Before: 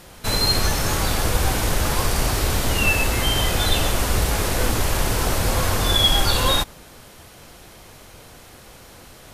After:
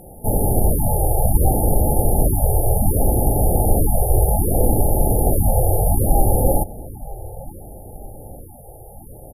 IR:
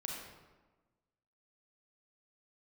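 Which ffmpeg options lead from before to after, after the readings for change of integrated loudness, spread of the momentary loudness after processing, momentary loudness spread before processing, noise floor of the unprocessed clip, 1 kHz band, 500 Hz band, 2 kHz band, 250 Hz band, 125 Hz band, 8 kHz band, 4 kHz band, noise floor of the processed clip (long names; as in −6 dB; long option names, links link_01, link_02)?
+1.5 dB, 18 LU, 5 LU, −45 dBFS, +1.0 dB, +5.0 dB, below −40 dB, +4.5 dB, +5.5 dB, −0.5 dB, below −40 dB, −40 dBFS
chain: -filter_complex "[0:a]afftfilt=real='re*(1-between(b*sr/4096,880,9500))':imag='im*(1-between(b*sr/4096,880,9500))':win_size=4096:overlap=0.75,asplit=2[link_01][link_02];[link_02]adelay=923,lowpass=frequency=2000:poles=1,volume=-18dB,asplit=2[link_03][link_04];[link_04]adelay=923,lowpass=frequency=2000:poles=1,volume=0.52,asplit=2[link_05][link_06];[link_06]adelay=923,lowpass=frequency=2000:poles=1,volume=0.52,asplit=2[link_07][link_08];[link_08]adelay=923,lowpass=frequency=2000:poles=1,volume=0.52[link_09];[link_01][link_03][link_05][link_07][link_09]amix=inputs=5:normalize=0,afftfilt=real='re*(1-between(b*sr/1024,210*pow(7000/210,0.5+0.5*sin(2*PI*0.65*pts/sr))/1.41,210*pow(7000/210,0.5+0.5*sin(2*PI*0.65*pts/sr))*1.41))':imag='im*(1-between(b*sr/1024,210*pow(7000/210,0.5+0.5*sin(2*PI*0.65*pts/sr))/1.41,210*pow(7000/210,0.5+0.5*sin(2*PI*0.65*pts/sr))*1.41))':win_size=1024:overlap=0.75,volume=5.5dB"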